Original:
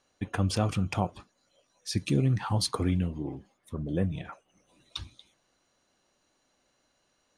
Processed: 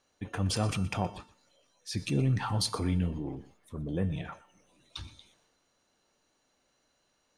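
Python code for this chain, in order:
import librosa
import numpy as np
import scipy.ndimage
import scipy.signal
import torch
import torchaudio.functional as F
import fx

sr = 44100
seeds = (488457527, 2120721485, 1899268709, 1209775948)

y = fx.transient(x, sr, attack_db=-4, sustain_db=4)
y = fx.comb_fb(y, sr, f0_hz=450.0, decay_s=0.68, harmonics='all', damping=0.0, mix_pct=70)
y = y + 10.0 ** (-18.5 / 20.0) * np.pad(y, (int(121 * sr / 1000.0), 0))[:len(y)]
y = y * librosa.db_to_amplitude(8.5)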